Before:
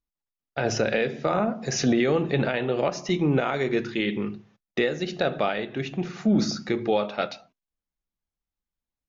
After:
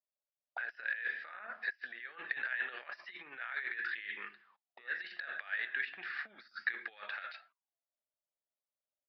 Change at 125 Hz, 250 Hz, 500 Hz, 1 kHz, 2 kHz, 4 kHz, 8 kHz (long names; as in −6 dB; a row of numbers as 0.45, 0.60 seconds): below −40 dB, below −40 dB, −33.5 dB, −18.5 dB, −3.0 dB, −17.0 dB, can't be measured